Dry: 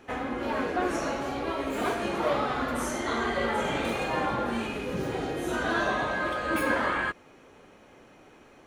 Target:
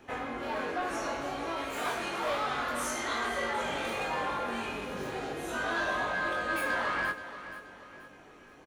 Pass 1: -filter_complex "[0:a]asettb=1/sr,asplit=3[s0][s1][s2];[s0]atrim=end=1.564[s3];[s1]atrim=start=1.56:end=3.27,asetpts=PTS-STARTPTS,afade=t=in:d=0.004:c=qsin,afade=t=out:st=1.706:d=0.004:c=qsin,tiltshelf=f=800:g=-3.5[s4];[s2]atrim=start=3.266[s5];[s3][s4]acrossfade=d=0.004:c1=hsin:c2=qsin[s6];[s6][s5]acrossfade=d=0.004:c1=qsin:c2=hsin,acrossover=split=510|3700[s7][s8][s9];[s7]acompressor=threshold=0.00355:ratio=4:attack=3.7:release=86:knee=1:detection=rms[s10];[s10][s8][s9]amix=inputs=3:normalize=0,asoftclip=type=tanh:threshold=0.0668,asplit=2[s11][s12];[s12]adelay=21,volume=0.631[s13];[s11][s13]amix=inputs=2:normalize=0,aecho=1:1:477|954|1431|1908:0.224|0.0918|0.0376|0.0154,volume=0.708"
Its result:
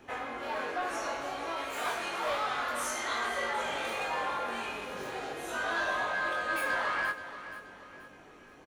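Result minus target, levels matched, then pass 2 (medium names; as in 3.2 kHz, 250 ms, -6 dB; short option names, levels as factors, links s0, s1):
compression: peak gain reduction +8.5 dB
-filter_complex "[0:a]asettb=1/sr,asplit=3[s0][s1][s2];[s0]atrim=end=1.564[s3];[s1]atrim=start=1.56:end=3.27,asetpts=PTS-STARTPTS,afade=t=in:d=0.004:c=qsin,afade=t=out:st=1.706:d=0.004:c=qsin,tiltshelf=f=800:g=-3.5[s4];[s2]atrim=start=3.266[s5];[s3][s4]acrossfade=d=0.004:c1=hsin:c2=qsin[s6];[s6][s5]acrossfade=d=0.004:c1=qsin:c2=hsin,acrossover=split=510|3700[s7][s8][s9];[s7]acompressor=threshold=0.0126:ratio=4:attack=3.7:release=86:knee=1:detection=rms[s10];[s10][s8][s9]amix=inputs=3:normalize=0,asoftclip=type=tanh:threshold=0.0668,asplit=2[s11][s12];[s12]adelay=21,volume=0.631[s13];[s11][s13]amix=inputs=2:normalize=0,aecho=1:1:477|954|1431|1908:0.224|0.0918|0.0376|0.0154,volume=0.708"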